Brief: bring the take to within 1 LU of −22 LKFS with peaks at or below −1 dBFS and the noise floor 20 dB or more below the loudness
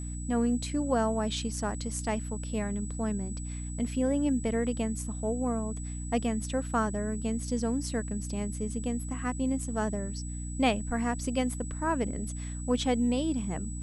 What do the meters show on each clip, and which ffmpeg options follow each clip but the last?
mains hum 60 Hz; hum harmonics up to 300 Hz; level of the hum −34 dBFS; interfering tone 7,900 Hz; level of the tone −44 dBFS; integrated loudness −31.0 LKFS; sample peak −12.0 dBFS; target loudness −22.0 LKFS
→ -af "bandreject=frequency=60:width_type=h:width=6,bandreject=frequency=120:width_type=h:width=6,bandreject=frequency=180:width_type=h:width=6,bandreject=frequency=240:width_type=h:width=6,bandreject=frequency=300:width_type=h:width=6"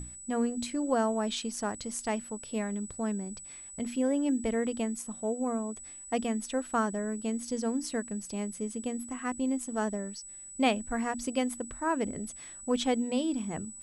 mains hum none found; interfering tone 7,900 Hz; level of the tone −44 dBFS
→ -af "bandreject=frequency=7900:width=30"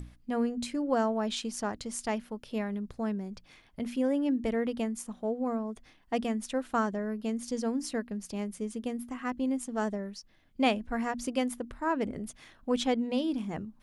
interfering tone none found; integrated loudness −32.5 LKFS; sample peak −12.0 dBFS; target loudness −22.0 LKFS
→ -af "volume=10.5dB"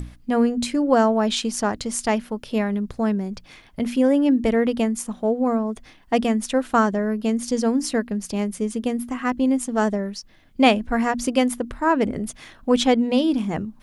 integrated loudness −22.0 LKFS; sample peak −1.5 dBFS; background noise floor −50 dBFS

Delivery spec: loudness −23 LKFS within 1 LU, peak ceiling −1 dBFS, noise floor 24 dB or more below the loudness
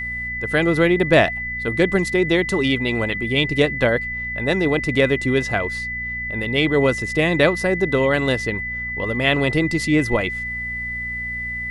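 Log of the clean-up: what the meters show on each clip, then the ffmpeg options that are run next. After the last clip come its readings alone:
mains hum 60 Hz; hum harmonics up to 240 Hz; level of the hum −34 dBFS; interfering tone 2,000 Hz; level of the tone −25 dBFS; integrated loudness −20.0 LKFS; sample peak −2.5 dBFS; target loudness −23.0 LKFS
→ -af "bandreject=frequency=60:width_type=h:width=4,bandreject=frequency=120:width_type=h:width=4,bandreject=frequency=180:width_type=h:width=4,bandreject=frequency=240:width_type=h:width=4"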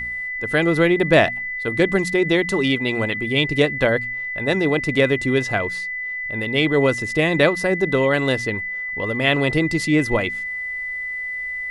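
mains hum none found; interfering tone 2,000 Hz; level of the tone −25 dBFS
→ -af "bandreject=frequency=2000:width=30"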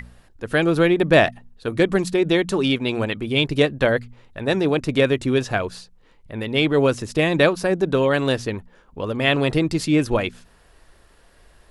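interfering tone none found; integrated loudness −20.5 LKFS; sample peak −2.5 dBFS; target loudness −23.0 LKFS
→ -af "volume=-2.5dB"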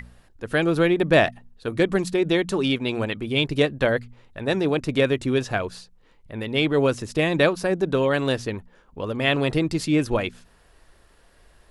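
integrated loudness −23.0 LKFS; sample peak −5.0 dBFS; background noise floor −57 dBFS

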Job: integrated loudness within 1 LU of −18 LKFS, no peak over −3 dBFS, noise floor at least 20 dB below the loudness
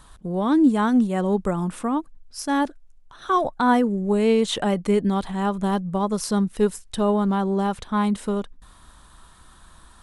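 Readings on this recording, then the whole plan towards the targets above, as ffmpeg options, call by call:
integrated loudness −22.5 LKFS; sample peak −9.0 dBFS; target loudness −18.0 LKFS
→ -af "volume=4.5dB"

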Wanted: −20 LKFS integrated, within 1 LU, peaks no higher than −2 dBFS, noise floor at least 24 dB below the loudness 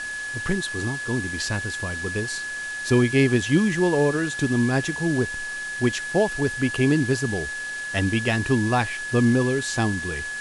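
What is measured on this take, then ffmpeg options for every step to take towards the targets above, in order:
interfering tone 1,700 Hz; level of the tone −29 dBFS; background noise floor −32 dBFS; target noise floor −48 dBFS; integrated loudness −23.5 LKFS; sample peak −7.5 dBFS; target loudness −20.0 LKFS
→ -af "bandreject=frequency=1700:width=30"
-af "afftdn=noise_reduction=16:noise_floor=-32"
-af "volume=3.5dB"

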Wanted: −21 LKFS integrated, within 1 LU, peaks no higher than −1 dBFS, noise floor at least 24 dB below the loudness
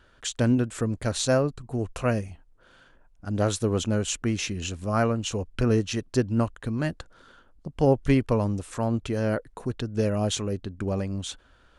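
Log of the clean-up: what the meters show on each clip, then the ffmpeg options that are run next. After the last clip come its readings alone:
integrated loudness −27.0 LKFS; sample peak −9.5 dBFS; target loudness −21.0 LKFS
→ -af "volume=6dB"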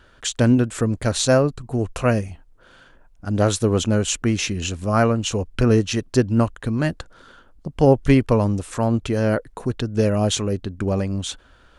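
integrated loudness −21.0 LKFS; sample peak −3.5 dBFS; background noise floor −53 dBFS

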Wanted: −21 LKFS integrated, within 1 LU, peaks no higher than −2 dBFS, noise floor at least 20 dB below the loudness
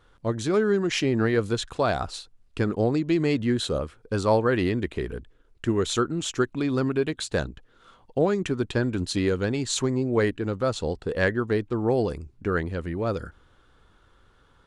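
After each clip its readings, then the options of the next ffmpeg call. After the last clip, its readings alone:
integrated loudness −26.0 LKFS; sample peak −9.0 dBFS; target loudness −21.0 LKFS
→ -af "volume=5dB"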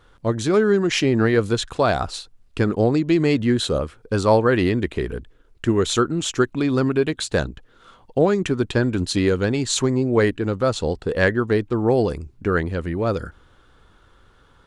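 integrated loudness −21.0 LKFS; sample peak −4.0 dBFS; background noise floor −55 dBFS

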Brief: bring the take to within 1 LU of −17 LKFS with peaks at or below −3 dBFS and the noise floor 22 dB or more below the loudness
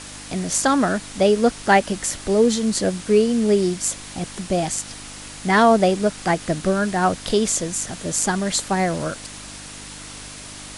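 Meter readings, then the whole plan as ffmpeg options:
mains hum 50 Hz; hum harmonics up to 300 Hz; level of the hum −43 dBFS; background noise floor −38 dBFS; target noise floor −43 dBFS; integrated loudness −20.5 LKFS; sample peak −3.0 dBFS; target loudness −17.0 LKFS
→ -af "bandreject=frequency=50:width_type=h:width=4,bandreject=frequency=100:width_type=h:width=4,bandreject=frequency=150:width_type=h:width=4,bandreject=frequency=200:width_type=h:width=4,bandreject=frequency=250:width_type=h:width=4,bandreject=frequency=300:width_type=h:width=4"
-af "afftdn=noise_reduction=6:noise_floor=-38"
-af "volume=3.5dB,alimiter=limit=-3dB:level=0:latency=1"

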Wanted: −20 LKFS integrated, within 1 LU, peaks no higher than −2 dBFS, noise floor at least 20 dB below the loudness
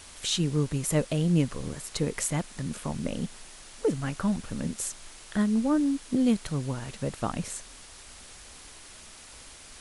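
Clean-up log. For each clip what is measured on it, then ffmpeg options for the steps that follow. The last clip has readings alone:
background noise floor −48 dBFS; target noise floor −49 dBFS; integrated loudness −29.0 LKFS; sample peak −12.0 dBFS; target loudness −20.0 LKFS
→ -af "afftdn=noise_reduction=6:noise_floor=-48"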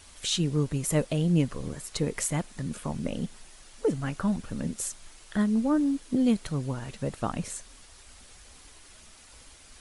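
background noise floor −53 dBFS; integrated loudness −29.5 LKFS; sample peak −12.0 dBFS; target loudness −20.0 LKFS
→ -af "volume=9.5dB"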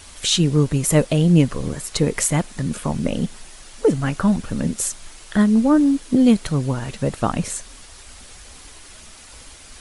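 integrated loudness −20.0 LKFS; sample peak −2.5 dBFS; background noise floor −43 dBFS

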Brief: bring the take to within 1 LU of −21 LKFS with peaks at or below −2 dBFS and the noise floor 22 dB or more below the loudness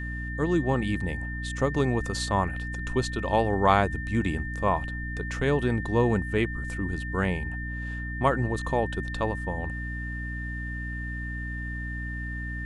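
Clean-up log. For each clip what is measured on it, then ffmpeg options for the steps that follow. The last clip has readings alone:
mains hum 60 Hz; hum harmonics up to 300 Hz; level of the hum −32 dBFS; interfering tone 1,800 Hz; level of the tone −36 dBFS; integrated loudness −28.5 LKFS; sample peak −6.5 dBFS; target loudness −21.0 LKFS
→ -af "bandreject=frequency=60:width_type=h:width=6,bandreject=frequency=120:width_type=h:width=6,bandreject=frequency=180:width_type=h:width=6,bandreject=frequency=240:width_type=h:width=6,bandreject=frequency=300:width_type=h:width=6"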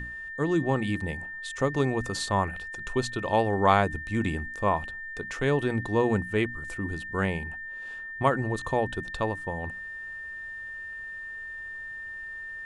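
mains hum none found; interfering tone 1,800 Hz; level of the tone −36 dBFS
→ -af "bandreject=frequency=1800:width=30"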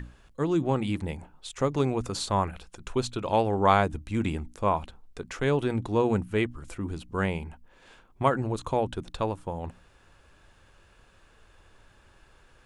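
interfering tone none found; integrated loudness −28.5 LKFS; sample peak −7.0 dBFS; target loudness −21.0 LKFS
→ -af "volume=7.5dB,alimiter=limit=-2dB:level=0:latency=1"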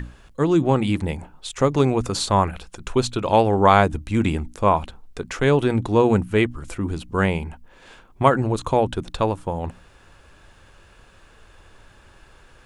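integrated loudness −21.0 LKFS; sample peak −2.0 dBFS; background noise floor −52 dBFS

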